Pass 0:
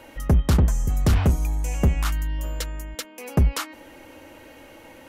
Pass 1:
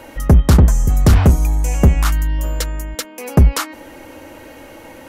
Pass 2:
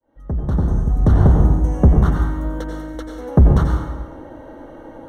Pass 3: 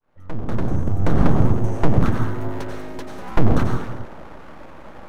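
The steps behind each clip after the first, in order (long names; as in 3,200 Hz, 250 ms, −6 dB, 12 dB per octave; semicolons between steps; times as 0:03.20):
parametric band 2,900 Hz −3.5 dB 1 octave; level +8.5 dB
fade in at the beginning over 1.43 s; moving average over 18 samples; dense smooth reverb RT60 1.2 s, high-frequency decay 0.8×, pre-delay 75 ms, DRR 1 dB; level −1 dB
full-wave rectification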